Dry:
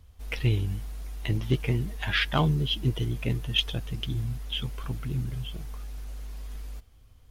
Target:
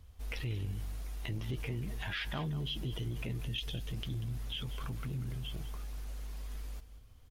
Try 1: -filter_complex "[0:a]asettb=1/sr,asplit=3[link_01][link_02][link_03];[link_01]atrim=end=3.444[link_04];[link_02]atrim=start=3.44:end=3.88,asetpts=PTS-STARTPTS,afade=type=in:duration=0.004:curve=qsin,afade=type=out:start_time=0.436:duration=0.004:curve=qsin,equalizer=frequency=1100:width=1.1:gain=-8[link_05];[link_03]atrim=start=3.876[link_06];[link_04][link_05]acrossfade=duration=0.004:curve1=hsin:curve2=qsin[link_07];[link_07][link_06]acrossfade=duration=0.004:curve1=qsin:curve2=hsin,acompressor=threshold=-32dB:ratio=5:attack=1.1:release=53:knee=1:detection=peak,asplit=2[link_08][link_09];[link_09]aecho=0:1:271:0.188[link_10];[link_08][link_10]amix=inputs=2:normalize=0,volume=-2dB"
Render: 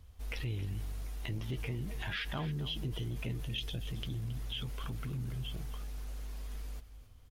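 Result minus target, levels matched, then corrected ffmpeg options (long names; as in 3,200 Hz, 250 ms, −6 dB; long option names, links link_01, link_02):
echo 81 ms late
-filter_complex "[0:a]asettb=1/sr,asplit=3[link_01][link_02][link_03];[link_01]atrim=end=3.444[link_04];[link_02]atrim=start=3.44:end=3.88,asetpts=PTS-STARTPTS,afade=type=in:duration=0.004:curve=qsin,afade=type=out:start_time=0.436:duration=0.004:curve=qsin,equalizer=frequency=1100:width=1.1:gain=-8[link_05];[link_03]atrim=start=3.876[link_06];[link_04][link_05]acrossfade=duration=0.004:curve1=hsin:curve2=qsin[link_07];[link_07][link_06]acrossfade=duration=0.004:curve1=qsin:curve2=hsin,acompressor=threshold=-32dB:ratio=5:attack=1.1:release=53:knee=1:detection=peak,asplit=2[link_08][link_09];[link_09]aecho=0:1:190:0.188[link_10];[link_08][link_10]amix=inputs=2:normalize=0,volume=-2dB"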